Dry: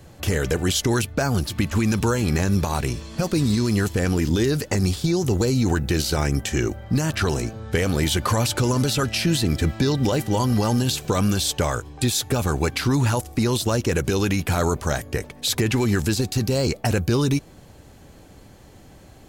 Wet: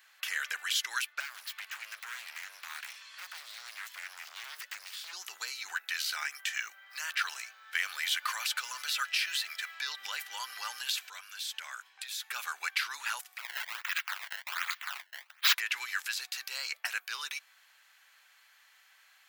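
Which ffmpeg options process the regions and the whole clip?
-filter_complex "[0:a]asettb=1/sr,asplit=3[s0][s1][s2];[s0]atrim=end=1.204[s3];[s1]atrim=start=1.2:end=5.13,asetpts=PTS-STARTPTS,afade=t=in:d=0.004:c=qsin,afade=t=out:st=3.926:d=0.004:c=qsin,highpass=f=88:w=0.5412,highpass=f=88:w=1.3066,acompressor=threshold=0.0631:ratio=3:attack=3.2:release=140:knee=1:detection=peak,aeval=exprs='0.0473*(abs(mod(val(0)/0.0473+3,4)-2)-1)':c=same[s4];[s2]atrim=start=5.126[s5];[s3][s4]acrossfade=d=0.004:c1=hsin:c2=qsin[s6];[s6][s5]acrossfade=d=0.004:c1=qsin:c2=hsin,asettb=1/sr,asplit=3[s7][s8][s9];[s7]atrim=end=6.024[s10];[s8]atrim=start=6.02:end=9.75,asetpts=PTS-STARTPTS,afade=t=in:d=0.004:c=qsin,afade=t=out:st=3.726:d=0.004:c=qsin,highpass=f=420:p=1,acrusher=bits=8:mode=log:mix=0:aa=0.000001[s11];[s9]atrim=start=9.746[s12];[s10][s11]acrossfade=d=0.004:c1=hsin:c2=qsin[s13];[s13][s12]acrossfade=d=0.004:c1=qsin:c2=hsin,asettb=1/sr,asplit=3[s14][s15][s16];[s14]atrim=end=11.014[s17];[s15]atrim=start=11.01:end=12.26,asetpts=PTS-STARTPTS,afade=t=in:d=0.004:c=qsin,afade=t=out:st=1.246:d=0.004:c=qsin,bandreject=f=1200:w=17,acompressor=threshold=0.0501:ratio=6:attack=3.2:release=140:knee=1:detection=peak[s18];[s16]atrim=start=12.256[s19];[s17][s18]acrossfade=d=0.004:c1=hsin:c2=qsin[s20];[s20][s19]acrossfade=d=0.004:c1=qsin:c2=hsin,asettb=1/sr,asplit=3[s21][s22][s23];[s21]atrim=end=13.384[s24];[s22]atrim=start=13.38:end=15.55,asetpts=PTS-STARTPTS,afade=t=in:d=0.004:c=qsin,afade=t=out:st=2.166:d=0.004:c=qsin,highpass=1400,aemphasis=mode=production:type=cd,acrusher=samples=21:mix=1:aa=0.000001:lfo=1:lforange=33.6:lforate=1.3[s25];[s23]atrim=start=15.546[s26];[s24][s25]acrossfade=d=0.004:c1=hsin:c2=qsin[s27];[s27][s26]acrossfade=d=0.004:c1=qsin:c2=hsin,highpass=f=1500:w=0.5412,highpass=f=1500:w=1.3066,equalizer=f=8300:w=0.44:g=-12.5,acontrast=71,volume=0.562"

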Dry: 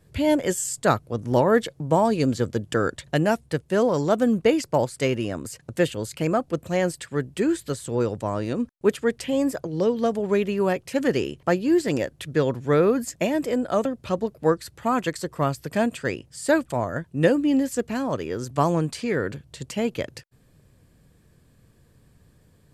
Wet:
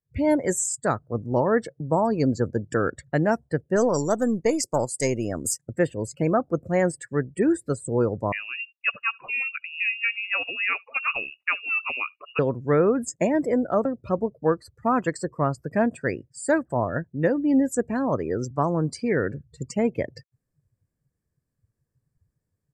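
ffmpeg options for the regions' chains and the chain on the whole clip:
-filter_complex "[0:a]asettb=1/sr,asplit=3[s0][s1][s2];[s0]atrim=end=3.764[s3];[s1]atrim=start=3.76:end=5.58,asetpts=PTS-STARTPTS,afade=t=in:d=0.004:c=qsin,afade=t=out:st=1.816:d=0.004:c=qsin,aeval=exprs='if(lt(val(0),0),0.708*val(0),val(0))':c=same,bass=f=250:g=-1,treble=f=4000:g=11[s4];[s2]atrim=start=5.576[s5];[s3][s4]acrossfade=d=0.004:c1=hsin:c2=qsin[s6];[s6][s5]acrossfade=d=0.004:c1=qsin:c2=hsin,asettb=1/sr,asplit=3[s7][s8][s9];[s7]atrim=end=8.324[s10];[s8]atrim=start=8.32:end=12.39,asetpts=PTS-STARTPTS,afade=t=in:d=0.004:c=qsin,afade=t=out:st=4.066:d=0.004:c=qsin,highpass=150,lowpass=f=2600:t=q:w=0.5098,lowpass=f=2600:t=q:w=0.6013,lowpass=f=2600:t=q:w=0.9,lowpass=f=2600:t=q:w=2.563,afreqshift=-3000,aecho=1:1:73:0.0668,atrim=end_sample=179487[s11];[s9]atrim=start=12.386[s12];[s10][s11]acrossfade=d=0.004:c1=hsin:c2=qsin[s13];[s13][s12]acrossfade=d=0.004:c1=qsin:c2=hsin,afftdn=nr=27:nf=-36,firequalizer=gain_entry='entry(2100,0);entry(3100,-17);entry(5100,2)':delay=0.05:min_phase=1,dynaudnorm=f=100:g=3:m=3.76,volume=0.376"

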